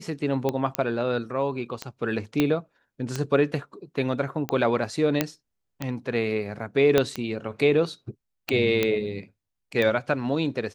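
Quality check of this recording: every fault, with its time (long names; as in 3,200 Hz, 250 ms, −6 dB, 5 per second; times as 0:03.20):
scratch tick 45 rpm −13 dBFS
0:00.75: click −9 dBFS
0:02.40: click −9 dBFS
0:05.21: click −6 dBFS
0:06.98: click −6 dBFS
0:08.83: click −9 dBFS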